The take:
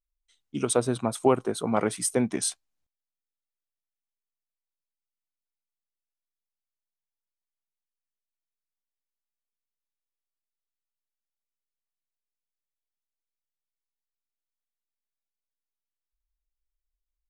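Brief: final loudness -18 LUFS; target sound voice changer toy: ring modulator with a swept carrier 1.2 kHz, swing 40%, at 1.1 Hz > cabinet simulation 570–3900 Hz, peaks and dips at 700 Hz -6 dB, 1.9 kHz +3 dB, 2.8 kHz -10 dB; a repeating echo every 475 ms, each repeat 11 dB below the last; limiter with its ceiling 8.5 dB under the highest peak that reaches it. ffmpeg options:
-af "alimiter=limit=0.168:level=0:latency=1,aecho=1:1:475|950|1425:0.282|0.0789|0.0221,aeval=exprs='val(0)*sin(2*PI*1200*n/s+1200*0.4/1.1*sin(2*PI*1.1*n/s))':c=same,highpass=570,equalizer=f=700:t=q:w=4:g=-6,equalizer=f=1900:t=q:w=4:g=3,equalizer=f=2800:t=q:w=4:g=-10,lowpass=f=3900:w=0.5412,lowpass=f=3900:w=1.3066,volume=5.96"

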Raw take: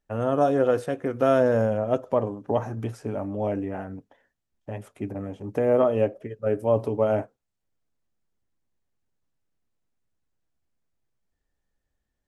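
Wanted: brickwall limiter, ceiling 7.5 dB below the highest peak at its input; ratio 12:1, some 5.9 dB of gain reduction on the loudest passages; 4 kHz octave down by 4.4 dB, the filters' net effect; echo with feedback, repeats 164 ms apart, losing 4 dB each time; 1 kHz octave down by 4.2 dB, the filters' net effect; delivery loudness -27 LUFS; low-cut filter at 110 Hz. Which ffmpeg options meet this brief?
-af "highpass=110,equalizer=f=1000:t=o:g=-6.5,equalizer=f=4000:t=o:g=-6,acompressor=threshold=0.0708:ratio=12,alimiter=limit=0.0794:level=0:latency=1,aecho=1:1:164|328|492|656|820|984|1148|1312|1476:0.631|0.398|0.25|0.158|0.0994|0.0626|0.0394|0.0249|0.0157,volume=1.68"

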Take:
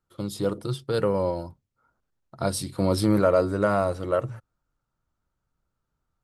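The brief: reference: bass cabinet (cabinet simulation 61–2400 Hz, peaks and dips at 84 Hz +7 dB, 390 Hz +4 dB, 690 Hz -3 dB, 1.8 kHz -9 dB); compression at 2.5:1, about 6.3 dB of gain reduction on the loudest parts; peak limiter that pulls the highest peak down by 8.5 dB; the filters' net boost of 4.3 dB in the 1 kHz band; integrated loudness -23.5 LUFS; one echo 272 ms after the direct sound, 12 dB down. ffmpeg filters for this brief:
-af "equalizer=f=1000:t=o:g=7.5,acompressor=threshold=0.0794:ratio=2.5,alimiter=limit=0.126:level=0:latency=1,highpass=f=61:w=0.5412,highpass=f=61:w=1.3066,equalizer=f=84:t=q:w=4:g=7,equalizer=f=390:t=q:w=4:g=4,equalizer=f=690:t=q:w=4:g=-3,equalizer=f=1800:t=q:w=4:g=-9,lowpass=f=2400:w=0.5412,lowpass=f=2400:w=1.3066,aecho=1:1:272:0.251,volume=2.24"

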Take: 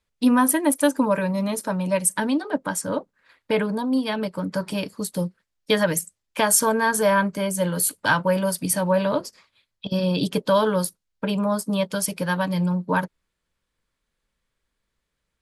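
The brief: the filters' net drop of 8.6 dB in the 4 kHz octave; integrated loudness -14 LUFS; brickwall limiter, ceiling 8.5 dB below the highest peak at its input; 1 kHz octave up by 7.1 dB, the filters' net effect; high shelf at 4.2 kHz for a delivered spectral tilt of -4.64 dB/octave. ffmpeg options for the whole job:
-af "equalizer=f=1000:t=o:g=8.5,equalizer=f=4000:t=o:g=-8.5,highshelf=f=4200:g=-7,volume=2.82,alimiter=limit=0.794:level=0:latency=1"

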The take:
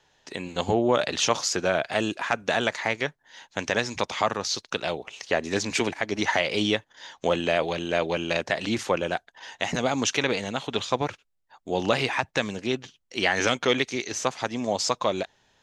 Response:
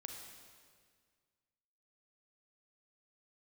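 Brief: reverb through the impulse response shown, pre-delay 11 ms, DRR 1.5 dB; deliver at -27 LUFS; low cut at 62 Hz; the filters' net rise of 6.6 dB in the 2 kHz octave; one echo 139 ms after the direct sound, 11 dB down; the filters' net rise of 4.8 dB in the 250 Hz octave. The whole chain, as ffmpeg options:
-filter_complex "[0:a]highpass=62,equalizer=f=250:t=o:g=6,equalizer=f=2000:t=o:g=8,aecho=1:1:139:0.282,asplit=2[s0][s1];[1:a]atrim=start_sample=2205,adelay=11[s2];[s1][s2]afir=irnorm=-1:irlink=0,volume=1.26[s3];[s0][s3]amix=inputs=2:normalize=0,volume=0.473"

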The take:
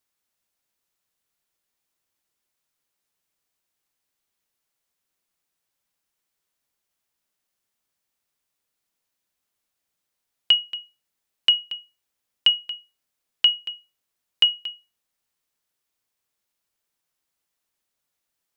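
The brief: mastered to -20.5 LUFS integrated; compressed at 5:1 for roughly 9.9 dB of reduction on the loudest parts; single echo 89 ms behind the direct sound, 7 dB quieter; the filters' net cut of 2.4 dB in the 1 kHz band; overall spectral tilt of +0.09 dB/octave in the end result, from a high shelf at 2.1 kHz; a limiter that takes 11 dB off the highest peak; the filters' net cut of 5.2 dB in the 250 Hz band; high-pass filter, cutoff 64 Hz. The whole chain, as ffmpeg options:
-af "highpass=64,equalizer=f=250:t=o:g=-7,equalizer=f=1000:t=o:g=-4,highshelf=f=2100:g=4.5,acompressor=threshold=0.0891:ratio=5,alimiter=limit=0.158:level=0:latency=1,aecho=1:1:89:0.447,volume=3.16"

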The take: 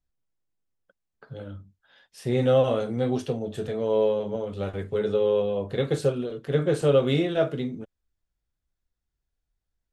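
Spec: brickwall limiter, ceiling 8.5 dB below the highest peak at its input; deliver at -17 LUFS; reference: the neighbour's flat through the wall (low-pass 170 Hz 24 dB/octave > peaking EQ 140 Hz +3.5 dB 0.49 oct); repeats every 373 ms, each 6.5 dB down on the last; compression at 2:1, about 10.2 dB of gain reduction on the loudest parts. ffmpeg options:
-af "acompressor=threshold=0.0178:ratio=2,alimiter=level_in=1.5:limit=0.0631:level=0:latency=1,volume=0.668,lowpass=f=170:w=0.5412,lowpass=f=170:w=1.3066,equalizer=f=140:t=o:w=0.49:g=3.5,aecho=1:1:373|746|1119|1492|1865|2238:0.473|0.222|0.105|0.0491|0.0231|0.0109,volume=21.1"

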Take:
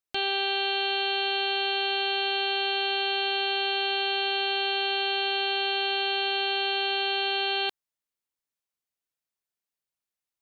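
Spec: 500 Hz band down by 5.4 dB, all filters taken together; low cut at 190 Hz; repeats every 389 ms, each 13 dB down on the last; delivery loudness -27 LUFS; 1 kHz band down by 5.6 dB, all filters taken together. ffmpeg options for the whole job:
-af "highpass=190,equalizer=f=500:t=o:g=-7,equalizer=f=1000:t=o:g=-4.5,aecho=1:1:389|778|1167:0.224|0.0493|0.0108,volume=0.841"

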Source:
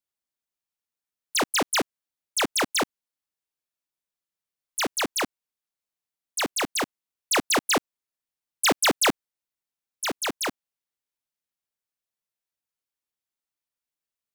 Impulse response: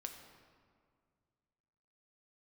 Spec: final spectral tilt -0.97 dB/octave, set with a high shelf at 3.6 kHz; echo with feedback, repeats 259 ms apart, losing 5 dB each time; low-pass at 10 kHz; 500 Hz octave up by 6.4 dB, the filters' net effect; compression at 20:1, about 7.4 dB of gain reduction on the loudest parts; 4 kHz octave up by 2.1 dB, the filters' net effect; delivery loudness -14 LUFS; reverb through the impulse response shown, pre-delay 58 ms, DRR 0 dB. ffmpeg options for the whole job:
-filter_complex "[0:a]lowpass=10000,equalizer=f=500:t=o:g=8,highshelf=f=3600:g=-5,equalizer=f=4000:t=o:g=6,acompressor=threshold=0.0891:ratio=20,aecho=1:1:259|518|777|1036|1295|1554|1813:0.562|0.315|0.176|0.0988|0.0553|0.031|0.0173,asplit=2[s0][s1];[1:a]atrim=start_sample=2205,adelay=58[s2];[s1][s2]afir=irnorm=-1:irlink=0,volume=1.41[s3];[s0][s3]amix=inputs=2:normalize=0,volume=3.16"

